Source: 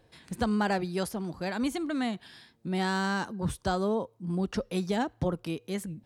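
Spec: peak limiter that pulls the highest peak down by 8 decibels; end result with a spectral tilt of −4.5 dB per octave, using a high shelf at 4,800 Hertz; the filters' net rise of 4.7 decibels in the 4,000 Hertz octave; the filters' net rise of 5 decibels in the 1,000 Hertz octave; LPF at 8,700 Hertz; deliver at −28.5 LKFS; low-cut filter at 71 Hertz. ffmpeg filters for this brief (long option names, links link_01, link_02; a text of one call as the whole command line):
ffmpeg -i in.wav -af "highpass=71,lowpass=8700,equalizer=frequency=1000:width_type=o:gain=6.5,equalizer=frequency=4000:width_type=o:gain=7.5,highshelf=frequency=4800:gain=-4.5,volume=4dB,alimiter=limit=-16.5dB:level=0:latency=1" out.wav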